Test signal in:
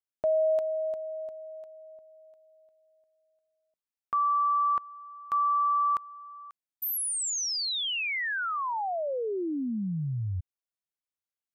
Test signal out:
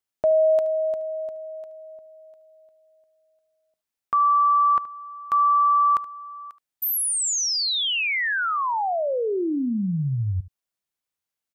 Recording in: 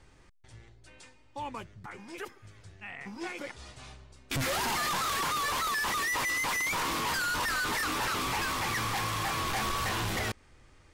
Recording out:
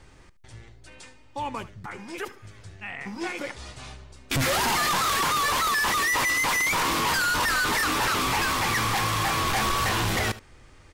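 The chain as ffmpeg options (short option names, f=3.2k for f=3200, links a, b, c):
-af "aecho=1:1:74:0.141,volume=6.5dB"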